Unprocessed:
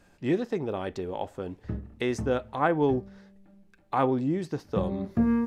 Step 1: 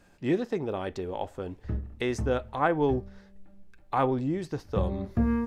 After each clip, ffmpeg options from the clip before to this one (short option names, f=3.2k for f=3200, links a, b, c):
-af "asubboost=boost=5:cutoff=81"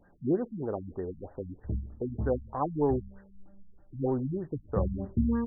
-af "afftfilt=real='re*lt(b*sr/1024,240*pow(2000/240,0.5+0.5*sin(2*PI*3.2*pts/sr)))':imag='im*lt(b*sr/1024,240*pow(2000/240,0.5+0.5*sin(2*PI*3.2*pts/sr)))':win_size=1024:overlap=0.75,volume=-1dB"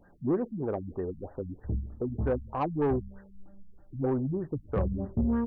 -af "asoftclip=type=tanh:threshold=-23dB,volume=2.5dB"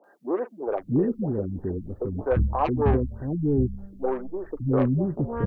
-filter_complex "[0:a]acrossover=split=380|1300[a][b][c];[c]adelay=40[d];[a]adelay=670[e];[e][b][d]amix=inputs=3:normalize=0,volume=8.5dB"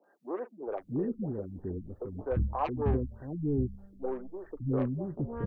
-filter_complex "[0:a]acrossover=split=480[a][b];[a]aeval=exprs='val(0)*(1-0.5/2+0.5/2*cos(2*PI*1.7*n/s))':c=same[c];[b]aeval=exprs='val(0)*(1-0.5/2-0.5/2*cos(2*PI*1.7*n/s))':c=same[d];[c][d]amix=inputs=2:normalize=0,volume=-6dB"